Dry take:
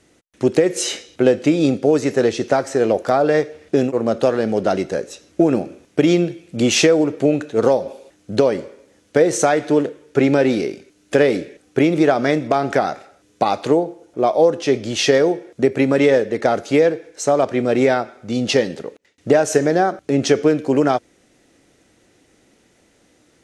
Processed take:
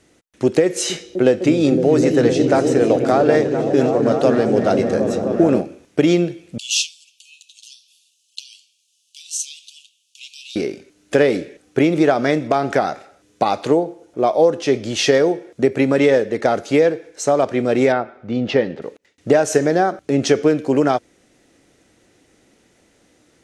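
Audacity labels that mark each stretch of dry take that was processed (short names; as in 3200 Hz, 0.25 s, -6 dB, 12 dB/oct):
0.640000	5.610000	repeats that get brighter 0.255 s, low-pass from 200 Hz, each repeat up 1 oct, level 0 dB
6.580000	10.560000	steep high-pass 2700 Hz 96 dB/oct
17.920000	18.820000	LPF 2500 Hz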